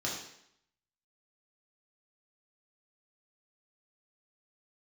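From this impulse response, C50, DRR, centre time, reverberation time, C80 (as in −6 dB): 3.5 dB, −4.5 dB, 44 ms, 0.70 s, 6.5 dB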